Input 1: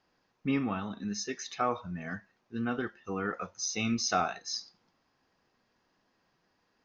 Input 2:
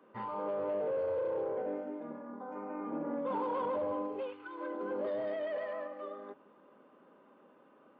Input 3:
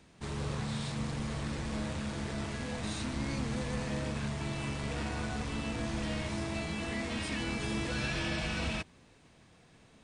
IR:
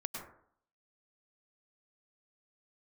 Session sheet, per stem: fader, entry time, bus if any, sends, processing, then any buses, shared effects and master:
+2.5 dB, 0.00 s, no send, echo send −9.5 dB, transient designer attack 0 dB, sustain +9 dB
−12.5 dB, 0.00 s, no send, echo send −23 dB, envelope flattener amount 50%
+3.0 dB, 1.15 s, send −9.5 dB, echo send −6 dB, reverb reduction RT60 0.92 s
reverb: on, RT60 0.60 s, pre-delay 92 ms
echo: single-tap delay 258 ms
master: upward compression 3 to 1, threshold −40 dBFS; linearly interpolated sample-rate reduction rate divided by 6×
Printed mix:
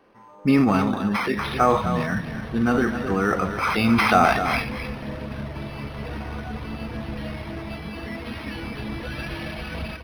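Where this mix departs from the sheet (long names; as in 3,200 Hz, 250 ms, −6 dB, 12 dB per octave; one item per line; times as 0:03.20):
stem 1 +2.5 dB → +11.5 dB
master: missing upward compression 3 to 1, threshold −40 dBFS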